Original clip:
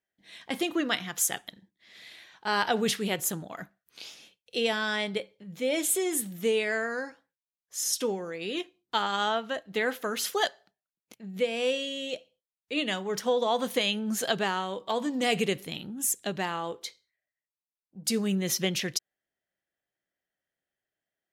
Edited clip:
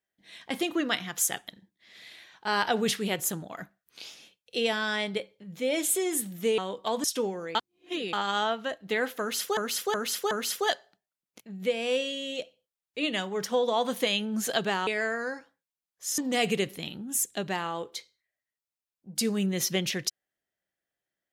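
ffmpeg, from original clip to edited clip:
-filter_complex "[0:a]asplit=10[s0][s1][s2][s3][s4][s5][s6][s7][s8][s9];[s0]atrim=end=6.582[s10];[s1]atrim=start=14.608:end=15.072[s11];[s2]atrim=start=7.888:end=8.402[s12];[s3]atrim=start=8.398:end=8.982,asetpts=PTS-STARTPTS,areverse[s13];[s4]atrim=start=8.978:end=10.422[s14];[s5]atrim=start=10.048:end=10.422[s15];[s6]atrim=start=10.048:end=10.422[s16];[s7]atrim=start=10.048:end=14.612[s17];[s8]atrim=start=6.578:end=7.892[s18];[s9]atrim=start=15.068[s19];[s10][s11]acrossfade=d=0.004:c1=hsin:c2=hsin[s20];[s20][s12]acrossfade=d=0.004:c1=hsin:c2=hsin[s21];[s21][s13]acrossfade=d=0.004:c1=hsin:c2=hsin[s22];[s22][s14]acrossfade=d=0.004:c1=hsin:c2=hsin[s23];[s23][s15]acrossfade=d=0.004:c1=hsin:c2=hsin[s24];[s24][s16]acrossfade=d=0.004:c1=hsin:c2=hsin[s25];[s25][s17]acrossfade=d=0.004:c1=hsin:c2=hsin[s26];[s26][s18]acrossfade=d=0.004:c1=hsin:c2=hsin[s27];[s27][s19]acrossfade=d=0.004:c1=hsin:c2=hsin"

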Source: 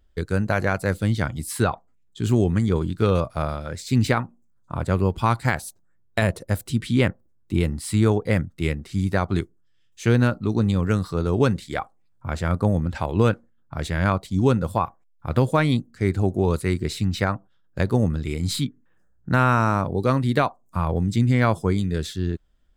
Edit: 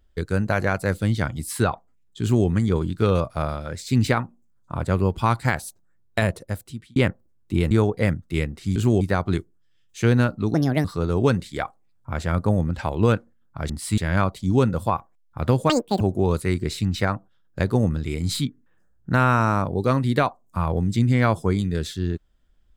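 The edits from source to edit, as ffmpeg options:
-filter_complex "[0:a]asplit=11[s0][s1][s2][s3][s4][s5][s6][s7][s8][s9][s10];[s0]atrim=end=6.96,asetpts=PTS-STARTPTS,afade=t=out:st=6.19:d=0.77[s11];[s1]atrim=start=6.96:end=7.712,asetpts=PTS-STARTPTS,afade=t=in:d=0.004:c=hsin[s12];[s2]atrim=start=7.988:end=9.042[s13];[s3]atrim=start=2.218:end=2.472[s14];[s4]atrim=start=9.038:end=10.574[s15];[s5]atrim=start=10.57:end=11.01,asetpts=PTS-STARTPTS,asetrate=63504,aresample=44100[s16];[s6]atrim=start=11.006:end=13.862[s17];[s7]atrim=start=7.708:end=7.992[s18];[s8]atrim=start=13.858:end=15.584[s19];[s9]atrim=start=15.58:end=16.2,asetpts=PTS-STARTPTS,asetrate=88200,aresample=44100[s20];[s10]atrim=start=16.196[s21];[s11][s12]concat=n=2:v=0:a=1[s22];[s22][s13]acrossfade=d=0.004:c1=hsin:c2=hsin[s23];[s23][s14]acrossfade=d=0.004:c1=hsin:c2=hsin[s24];[s24][s15]acrossfade=d=0.004:c1=hsin:c2=hsin[s25];[s25][s16]acrossfade=d=0.004:c1=hsin:c2=hsin[s26];[s26][s17]acrossfade=d=0.004:c1=hsin:c2=hsin[s27];[s27][s18]acrossfade=d=0.004:c1=hsin:c2=hsin[s28];[s28][s19]acrossfade=d=0.004:c1=hsin:c2=hsin[s29];[s29][s20]acrossfade=d=0.004:c1=hsin:c2=hsin[s30];[s30][s21]acrossfade=d=0.004:c1=hsin:c2=hsin"

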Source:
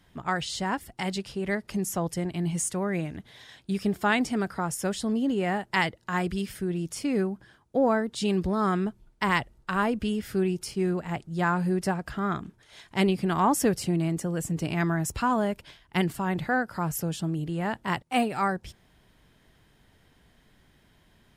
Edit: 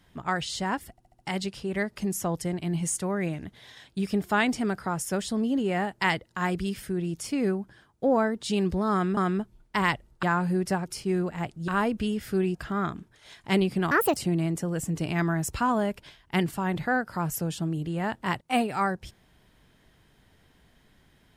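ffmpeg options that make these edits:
-filter_complex "[0:a]asplit=12[s0][s1][s2][s3][s4][s5][s6][s7][s8][s9][s10][s11];[s0]atrim=end=0.982[s12];[s1]atrim=start=0.908:end=0.982[s13];[s2]atrim=start=0.908:end=0.982[s14];[s3]atrim=start=0.908:end=0.982[s15];[s4]atrim=start=0.908:end=8.892[s16];[s5]atrim=start=8.638:end=9.702[s17];[s6]atrim=start=11.388:end=12.022[s18];[s7]atrim=start=10.568:end=11.392[s19];[s8]atrim=start=9.698:end=10.572[s20];[s9]atrim=start=12.018:end=13.384[s21];[s10]atrim=start=13.38:end=13.78,asetpts=PTS-STARTPTS,asetrate=69237,aresample=44100[s22];[s11]atrim=start=13.776[s23];[s12][s13]acrossfade=d=0.004:c1=hsin:c2=hsin[s24];[s24][s14]acrossfade=d=0.004:c1=hsin:c2=hsin[s25];[s25][s15]acrossfade=d=0.004:c1=hsin:c2=hsin[s26];[s26][s16]acrossfade=d=0.004:c1=hsin:c2=hsin[s27];[s27][s17]acrossfade=d=0.004:c1=hsin:c2=hsin[s28];[s28][s18]acrossfade=d=0.004:c1=hsin:c2=hsin[s29];[s29][s19]acrossfade=d=0.004:c1=hsin:c2=hsin[s30];[s30][s20]acrossfade=d=0.004:c1=hsin:c2=hsin[s31];[s31][s21]acrossfade=d=0.004:c1=hsin:c2=hsin[s32];[s32][s22]acrossfade=d=0.004:c1=hsin:c2=hsin[s33];[s33][s23]acrossfade=d=0.004:c1=hsin:c2=hsin"

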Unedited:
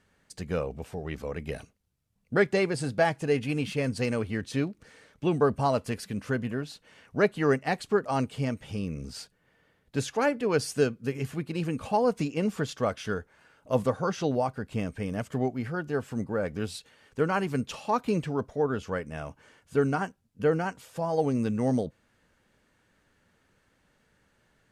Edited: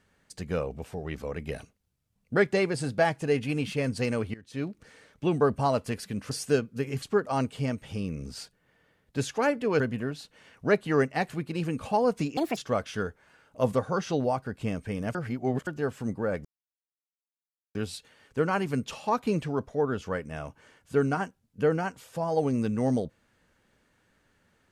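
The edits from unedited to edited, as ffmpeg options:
-filter_complex "[0:a]asplit=11[s0][s1][s2][s3][s4][s5][s6][s7][s8][s9][s10];[s0]atrim=end=4.34,asetpts=PTS-STARTPTS,afade=t=out:st=4.336:d=0.004:c=hsin:silence=0.11885[s11];[s1]atrim=start=4.34:end=6.312,asetpts=PTS-STARTPTS,afade=t=in:d=0.36:c=qua:silence=0.11885[s12];[s2]atrim=start=10.588:end=11.302[s13];[s3]atrim=start=7.808:end=10.592[s14];[s4]atrim=start=6.308:end=7.812[s15];[s5]atrim=start=11.298:end=12.374[s16];[s6]atrim=start=12.37:end=12.68,asetpts=PTS-STARTPTS,asetrate=68796,aresample=44100,atrim=end_sample=8763,asetpts=PTS-STARTPTS[s17];[s7]atrim=start=12.676:end=15.262[s18];[s8]atrim=start=15.258:end=15.782,asetpts=PTS-STARTPTS,areverse[s19];[s9]atrim=start=15.778:end=16.56,asetpts=PTS-STARTPTS,afade=t=out:st=0.778:d=0.004:c=hsin,apad=pad_dur=1.3[s20];[s10]atrim=start=16.56,asetpts=PTS-STARTPTS,afade=t=in:d=0.004:c=hsin[s21];[s11][s12]concat=n=2:v=0:a=1[s22];[s22][s13]acrossfade=d=0.004:c1=hsin:c2=hsin[s23];[s23][s14]acrossfade=d=0.004:c1=hsin:c2=hsin[s24];[s24][s15]acrossfade=d=0.004:c1=hsin:c2=hsin[s25];[s25][s16]acrossfade=d=0.004:c1=hsin:c2=hsin[s26];[s26][s17]acrossfade=d=0.004:c1=hsin:c2=hsin[s27];[s27][s18]acrossfade=d=0.004:c1=hsin:c2=hsin[s28];[s28][s19]acrossfade=d=0.004:c1=hsin:c2=hsin[s29];[s20][s21]concat=n=2:v=0:a=1[s30];[s29][s30]acrossfade=d=0.004:c1=hsin:c2=hsin"

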